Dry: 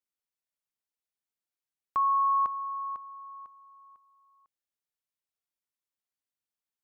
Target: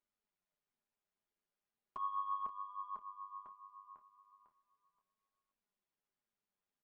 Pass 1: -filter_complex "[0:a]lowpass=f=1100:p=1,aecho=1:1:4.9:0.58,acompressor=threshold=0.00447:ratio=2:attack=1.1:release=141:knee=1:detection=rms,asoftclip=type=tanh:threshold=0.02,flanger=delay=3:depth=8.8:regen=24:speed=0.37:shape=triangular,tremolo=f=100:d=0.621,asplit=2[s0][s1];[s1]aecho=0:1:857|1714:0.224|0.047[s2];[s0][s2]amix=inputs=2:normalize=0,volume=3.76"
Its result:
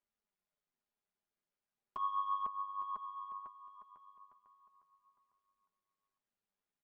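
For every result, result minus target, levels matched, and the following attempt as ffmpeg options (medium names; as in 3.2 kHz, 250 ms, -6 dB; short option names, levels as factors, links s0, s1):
echo 331 ms late; compression: peak gain reduction -3.5 dB
-filter_complex "[0:a]lowpass=f=1100:p=1,aecho=1:1:4.9:0.58,acompressor=threshold=0.00447:ratio=2:attack=1.1:release=141:knee=1:detection=rms,asoftclip=type=tanh:threshold=0.02,flanger=delay=3:depth=8.8:regen=24:speed=0.37:shape=triangular,tremolo=f=100:d=0.621,asplit=2[s0][s1];[s1]aecho=0:1:526|1052:0.224|0.047[s2];[s0][s2]amix=inputs=2:normalize=0,volume=3.76"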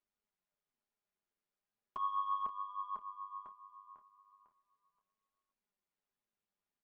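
compression: peak gain reduction -3.5 dB
-filter_complex "[0:a]lowpass=f=1100:p=1,aecho=1:1:4.9:0.58,acompressor=threshold=0.002:ratio=2:attack=1.1:release=141:knee=1:detection=rms,asoftclip=type=tanh:threshold=0.02,flanger=delay=3:depth=8.8:regen=24:speed=0.37:shape=triangular,tremolo=f=100:d=0.621,asplit=2[s0][s1];[s1]aecho=0:1:526|1052:0.224|0.047[s2];[s0][s2]amix=inputs=2:normalize=0,volume=3.76"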